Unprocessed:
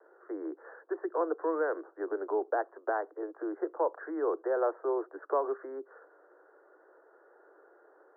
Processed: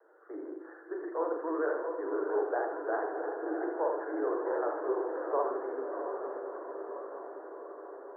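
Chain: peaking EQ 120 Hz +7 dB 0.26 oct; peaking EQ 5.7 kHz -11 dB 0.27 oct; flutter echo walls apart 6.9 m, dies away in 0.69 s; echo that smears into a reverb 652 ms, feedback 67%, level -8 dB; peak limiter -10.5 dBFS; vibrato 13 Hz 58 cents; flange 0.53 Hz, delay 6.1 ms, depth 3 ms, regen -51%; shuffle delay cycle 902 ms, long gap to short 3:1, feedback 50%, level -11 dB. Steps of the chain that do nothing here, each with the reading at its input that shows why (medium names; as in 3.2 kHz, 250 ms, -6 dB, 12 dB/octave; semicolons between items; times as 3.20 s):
peaking EQ 120 Hz: input has nothing below 250 Hz; peaking EQ 5.7 kHz: input has nothing above 1.8 kHz; peak limiter -10.5 dBFS: peak at its input -15.0 dBFS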